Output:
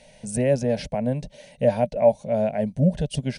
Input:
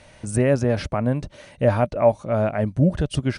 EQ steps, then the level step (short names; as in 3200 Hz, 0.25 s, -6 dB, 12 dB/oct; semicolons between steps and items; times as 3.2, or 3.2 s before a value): fixed phaser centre 330 Hz, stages 6; 0.0 dB